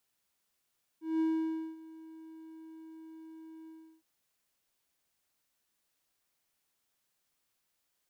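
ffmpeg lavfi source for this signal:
-f lavfi -i "aevalsrc='0.0631*(1-4*abs(mod(321*t+0.25,1)-0.5))':d=3.013:s=44100,afade=t=in:d=0.189,afade=t=out:st=0.189:d=0.56:silence=0.0891,afade=t=out:st=2.67:d=0.343"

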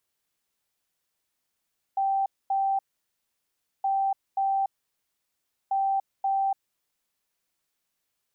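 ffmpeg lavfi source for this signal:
-f lavfi -i "aevalsrc='0.0794*sin(2*PI*781*t)*clip(min(mod(mod(t,1.87),0.53),0.29-mod(mod(t,1.87),0.53))/0.005,0,1)*lt(mod(t,1.87),1.06)':d=5.61:s=44100"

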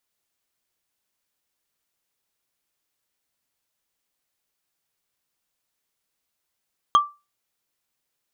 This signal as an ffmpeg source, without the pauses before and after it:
-f lavfi -i "aevalsrc='0.376*pow(10,-3*t/0.26)*sin(2*PI*1170*t)+0.119*pow(10,-3*t/0.077)*sin(2*PI*3225.7*t)+0.0376*pow(10,-3*t/0.034)*sin(2*PI*6322.7*t)+0.0119*pow(10,-3*t/0.019)*sin(2*PI*10451.6*t)+0.00376*pow(10,-3*t/0.012)*sin(2*PI*15607.8*t)':d=0.45:s=44100"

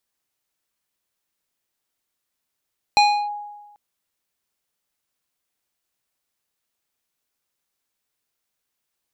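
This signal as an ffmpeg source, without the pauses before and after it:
-f lavfi -i "aevalsrc='0.335*pow(10,-3*t/1.22)*sin(2*PI*828*t+0.84*clip(1-t/0.32,0,1)*sin(2*PI*3.97*828*t))':d=0.79:s=44100"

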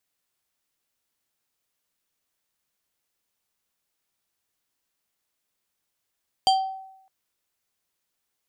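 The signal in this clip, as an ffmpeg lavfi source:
-f lavfi -i "aevalsrc='0.211*pow(10,-3*t/0.81)*sin(2*PI*766*t+0.97*pow(10,-3*t/0.47)*sin(2*PI*5.13*766*t))':d=0.61:s=44100"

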